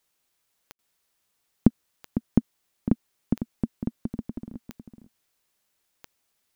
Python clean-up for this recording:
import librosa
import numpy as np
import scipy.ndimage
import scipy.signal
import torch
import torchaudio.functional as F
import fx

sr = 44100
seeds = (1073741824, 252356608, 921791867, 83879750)

y = fx.fix_declick_ar(x, sr, threshold=10.0)
y = fx.fix_ambience(y, sr, seeds[0], print_start_s=5.31, print_end_s=5.81, start_s=0.72, end_s=0.79)
y = fx.fix_echo_inverse(y, sr, delay_ms=503, level_db=-10.0)